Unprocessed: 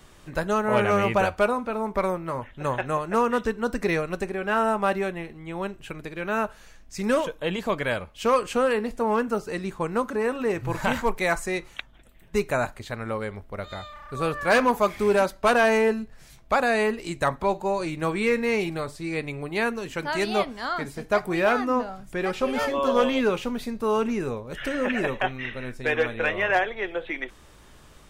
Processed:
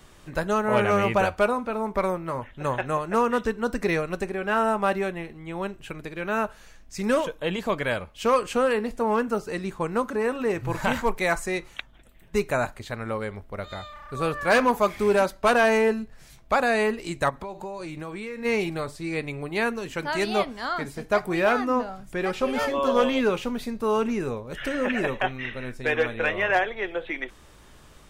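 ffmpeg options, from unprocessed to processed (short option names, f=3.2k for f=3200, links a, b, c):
-filter_complex "[0:a]asplit=3[a][b][c];[a]afade=t=out:st=17.29:d=0.02[d];[b]acompressor=threshold=-31dB:ratio=8:attack=3.2:release=140:knee=1:detection=peak,afade=t=in:st=17.29:d=0.02,afade=t=out:st=18.44:d=0.02[e];[c]afade=t=in:st=18.44:d=0.02[f];[d][e][f]amix=inputs=3:normalize=0"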